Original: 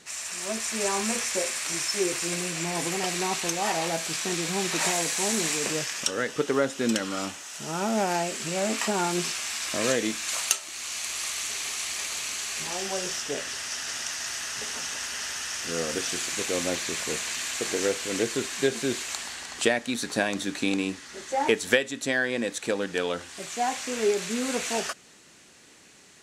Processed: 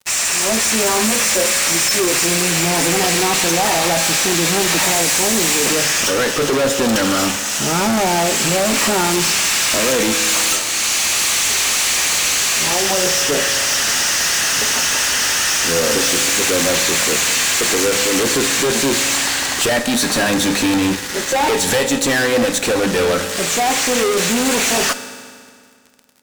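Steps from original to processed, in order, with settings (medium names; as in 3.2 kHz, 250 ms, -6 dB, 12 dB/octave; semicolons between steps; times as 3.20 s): hum notches 50/100/150/200 Hz; fuzz box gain 39 dB, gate -45 dBFS; on a send: reverberation RT60 2.1 s, pre-delay 3 ms, DRR 10 dB; on the sum: trim -1.5 dB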